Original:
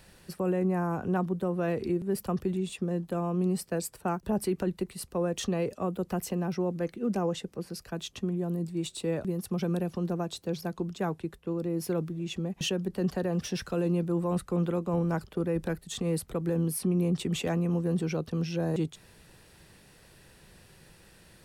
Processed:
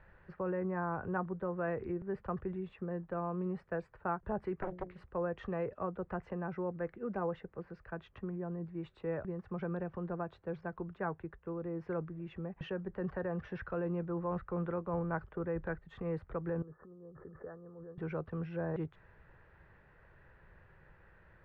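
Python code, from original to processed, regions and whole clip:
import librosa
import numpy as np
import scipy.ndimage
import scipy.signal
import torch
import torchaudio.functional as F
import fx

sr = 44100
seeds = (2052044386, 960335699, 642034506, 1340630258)

y = fx.chain(x, sr, fx.high_shelf(hz=5500.0, db=5.5),
    fx.hum_notches(base_hz=60, count=8),
    fx.doppler_dist(depth_ms=0.83), at=(4.57, 5.06))
y = fx.chain(y, sr, fx.over_compress(threshold_db=-36.0, ratio=-1.0),
    fx.cheby_ripple(hz=1800.0, ripple_db=9), at=(16.62, 17.98))
y = scipy.signal.sosfilt(scipy.signal.cheby1(3, 1.0, 1700.0, 'lowpass', fs=sr, output='sos'), y)
y = fx.peak_eq(y, sr, hz=240.0, db=-12.0, octaves=1.7)
y = fx.notch(y, sr, hz=730.0, q=16.0)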